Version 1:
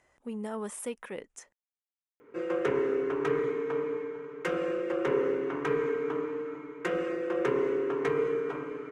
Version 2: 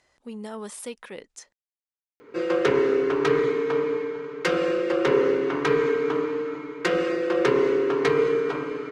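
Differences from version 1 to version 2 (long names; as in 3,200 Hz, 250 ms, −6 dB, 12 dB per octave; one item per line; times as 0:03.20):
background +7.0 dB
master: add parametric band 4,400 Hz +13.5 dB 0.82 octaves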